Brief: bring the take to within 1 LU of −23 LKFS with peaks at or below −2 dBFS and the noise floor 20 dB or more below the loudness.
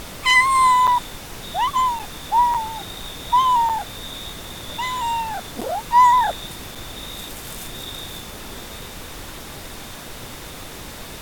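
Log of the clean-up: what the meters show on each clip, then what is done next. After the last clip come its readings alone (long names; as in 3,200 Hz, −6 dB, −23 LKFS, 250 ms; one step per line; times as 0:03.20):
number of dropouts 6; longest dropout 6.2 ms; background noise floor −36 dBFS; target noise floor −40 dBFS; integrated loudness −19.5 LKFS; sample peak −5.5 dBFS; target loudness −23.0 LKFS
→ repair the gap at 0:00.87/0:01.99/0:02.54/0:03.69/0:05.61/0:06.75, 6.2 ms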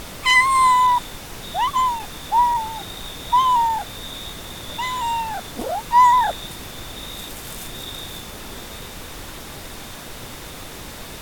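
number of dropouts 0; background noise floor −36 dBFS; target noise floor −39 dBFS
→ noise reduction from a noise print 6 dB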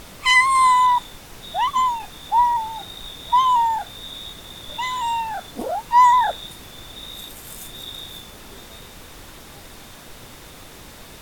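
background noise floor −42 dBFS; integrated loudness −18.5 LKFS; sample peak −6.0 dBFS; target loudness −23.0 LKFS
→ level −4.5 dB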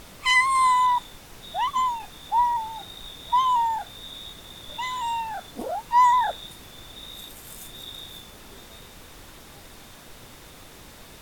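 integrated loudness −23.0 LKFS; sample peak −10.5 dBFS; background noise floor −47 dBFS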